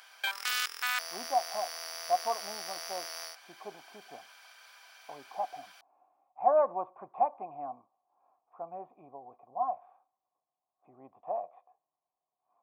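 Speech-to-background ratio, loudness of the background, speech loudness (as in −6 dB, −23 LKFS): 1.5 dB, −35.5 LKFS, −34.0 LKFS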